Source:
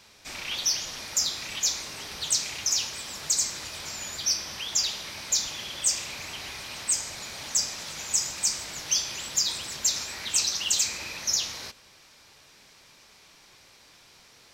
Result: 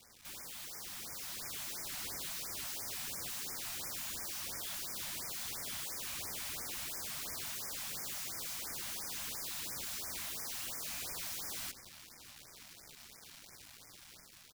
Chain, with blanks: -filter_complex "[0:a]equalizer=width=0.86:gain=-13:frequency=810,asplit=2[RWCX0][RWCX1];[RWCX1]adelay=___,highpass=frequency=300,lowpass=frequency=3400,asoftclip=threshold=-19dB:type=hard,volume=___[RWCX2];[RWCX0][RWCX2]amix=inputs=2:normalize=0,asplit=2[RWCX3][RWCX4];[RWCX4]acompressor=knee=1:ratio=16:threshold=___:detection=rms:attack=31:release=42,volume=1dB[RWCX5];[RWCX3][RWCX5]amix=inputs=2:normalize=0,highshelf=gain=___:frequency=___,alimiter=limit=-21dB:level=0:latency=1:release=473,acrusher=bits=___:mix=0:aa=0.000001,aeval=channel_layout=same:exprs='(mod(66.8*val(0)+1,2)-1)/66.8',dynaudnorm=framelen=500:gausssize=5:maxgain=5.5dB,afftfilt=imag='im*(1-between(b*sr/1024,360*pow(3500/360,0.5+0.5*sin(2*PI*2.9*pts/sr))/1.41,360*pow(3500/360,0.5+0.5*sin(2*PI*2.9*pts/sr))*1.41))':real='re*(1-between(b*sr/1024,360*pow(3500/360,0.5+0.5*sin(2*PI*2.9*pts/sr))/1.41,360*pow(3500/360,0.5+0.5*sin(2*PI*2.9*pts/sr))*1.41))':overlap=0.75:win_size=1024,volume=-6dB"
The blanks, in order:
130, -18dB, -38dB, -8, 4800, 7